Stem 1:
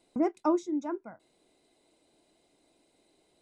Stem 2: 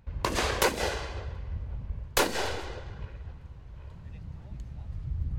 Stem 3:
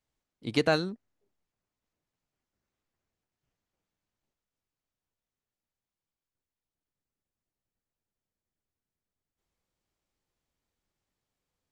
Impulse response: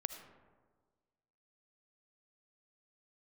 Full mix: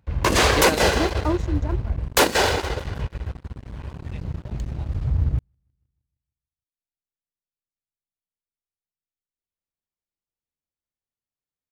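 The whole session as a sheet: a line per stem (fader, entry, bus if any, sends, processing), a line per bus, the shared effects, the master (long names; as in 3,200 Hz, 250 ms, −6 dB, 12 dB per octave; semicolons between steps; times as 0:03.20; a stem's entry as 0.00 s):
−8.0 dB, 0.80 s, no send, no echo send, no processing
+2.5 dB, 0.00 s, no send, echo send −22 dB, high-pass filter 41 Hz 24 dB per octave
−9.0 dB, 0.00 s, no send, echo send −5 dB, no processing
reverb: not used
echo: repeating echo 156 ms, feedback 54%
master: transient designer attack −4 dB, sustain −8 dB; leveller curve on the samples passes 3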